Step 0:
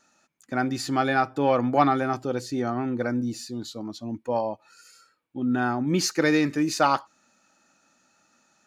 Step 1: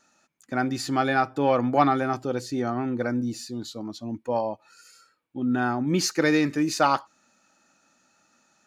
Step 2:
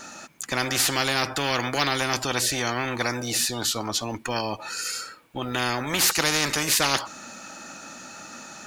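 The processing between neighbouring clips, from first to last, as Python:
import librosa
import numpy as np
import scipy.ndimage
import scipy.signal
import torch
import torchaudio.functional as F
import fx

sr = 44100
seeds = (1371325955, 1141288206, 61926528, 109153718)

y1 = x
y2 = fx.spectral_comp(y1, sr, ratio=4.0)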